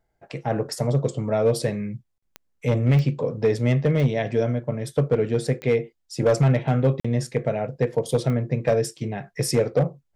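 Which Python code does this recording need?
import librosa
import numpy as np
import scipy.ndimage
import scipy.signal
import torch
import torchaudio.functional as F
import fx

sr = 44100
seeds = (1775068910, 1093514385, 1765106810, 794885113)

y = fx.fix_declip(x, sr, threshold_db=-12.5)
y = fx.fix_declick_ar(y, sr, threshold=10.0)
y = fx.fix_interpolate(y, sr, at_s=(2.18, 7.0), length_ms=45.0)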